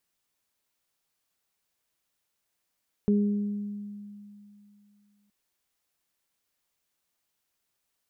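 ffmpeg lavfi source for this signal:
ffmpeg -f lavfi -i "aevalsrc='0.112*pow(10,-3*t/2.75)*sin(2*PI*205*t)+0.0501*pow(10,-3*t/1.13)*sin(2*PI*410*t)':duration=2.22:sample_rate=44100" out.wav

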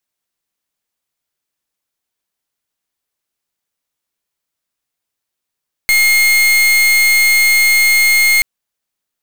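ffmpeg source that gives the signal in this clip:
ffmpeg -f lavfi -i "aevalsrc='0.299*(2*lt(mod(2140*t,1),0.39)-1)':duration=2.53:sample_rate=44100" out.wav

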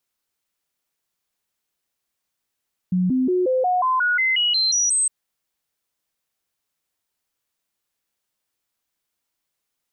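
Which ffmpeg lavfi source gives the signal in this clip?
ffmpeg -f lavfi -i "aevalsrc='0.15*clip(min(mod(t,0.18),0.18-mod(t,0.18))/0.005,0,1)*sin(2*PI*182*pow(2,floor(t/0.18)/2)*mod(t,0.18))':duration=2.16:sample_rate=44100" out.wav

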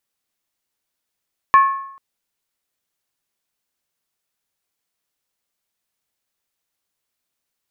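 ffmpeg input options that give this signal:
ffmpeg -f lavfi -i "aevalsrc='0.562*pow(10,-3*t/0.71)*sin(2*PI*1090*t)+0.158*pow(10,-3*t/0.562)*sin(2*PI*1737.5*t)+0.0447*pow(10,-3*t/0.486)*sin(2*PI*2328.2*t)+0.0126*pow(10,-3*t/0.469)*sin(2*PI*2502.6*t)+0.00355*pow(10,-3*t/0.436)*sin(2*PI*2891.8*t)':duration=0.44:sample_rate=44100" out.wav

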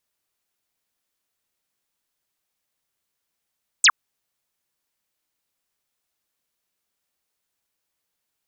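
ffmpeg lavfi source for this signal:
ffmpeg -f lavfi -i "aevalsrc='0.316*clip(t/0.002,0,1)*clip((0.06-t)/0.002,0,1)*sin(2*PI*8900*0.06/log(970/8900)*(exp(log(970/8900)*t/0.06)-1))':duration=0.06:sample_rate=44100" out.wav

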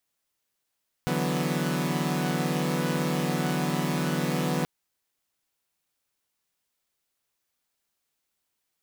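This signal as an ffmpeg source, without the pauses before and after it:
ffmpeg -f lavfi -i "aevalsrc='0.0398*((2*mod(146.83*t,1)-1)+(2*mod(164.81*t,1)-1)+(2*mod(185*t,1)-1)+(2*mod(246.94*t,1)-1))':duration=3.58:sample_rate=44100" out.wav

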